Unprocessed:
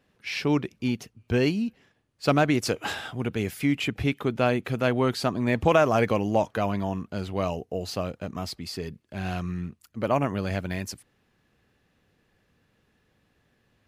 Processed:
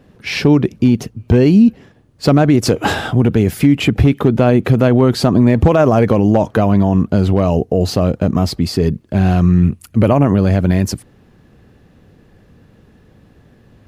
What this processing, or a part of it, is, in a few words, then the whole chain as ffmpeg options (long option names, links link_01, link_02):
mastering chain: -filter_complex "[0:a]asettb=1/sr,asplit=3[link_01][link_02][link_03];[link_01]atrim=end=9.634[link_04];[link_02]atrim=start=9.63:end=10.13,asetpts=PTS-STARTPTS,afade=type=in:duration=0.004:curve=qsin,afade=type=out:start_time=0.496:duration=0.004:curve=qsin,equalizer=frequency=100:width_type=o:width=0.67:gain=5,equalizer=frequency=2500:width_type=o:width=0.67:gain=7,equalizer=frequency=10000:width_type=o:width=0.67:gain=9[link_05];[link_03]atrim=start=10.126[link_06];[link_04][link_05]acrossfade=duration=0.004:curve1=hsin:curve2=qsin[link_07];[link_07][link_06]acrossfade=duration=0.004:curve1=qsin:curve2=hsin,equalizer=frequency=2400:width_type=o:width=0.77:gain=-2,acompressor=threshold=-24dB:ratio=3,tiltshelf=frequency=720:gain=6,asoftclip=type=hard:threshold=-15dB,alimiter=level_in=19dB:limit=-1dB:release=50:level=0:latency=1,volume=-2dB"